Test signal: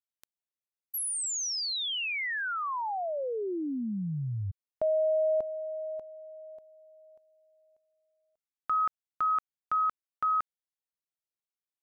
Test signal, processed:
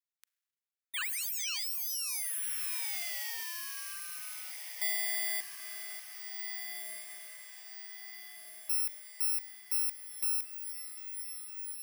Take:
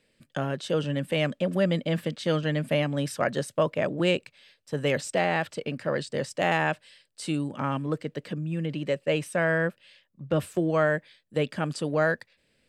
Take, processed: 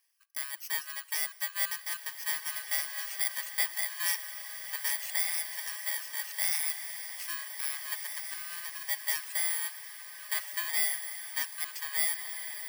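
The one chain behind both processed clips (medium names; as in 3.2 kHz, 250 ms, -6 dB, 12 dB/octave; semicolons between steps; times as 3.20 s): bit-reversed sample order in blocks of 32 samples; ladder high-pass 1.2 kHz, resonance 30%; reverb removal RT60 0.78 s; echo that smears into a reverb 1696 ms, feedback 53%, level -7.5 dB; Schroeder reverb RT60 1.7 s, combs from 33 ms, DRR 19.5 dB; trim +3.5 dB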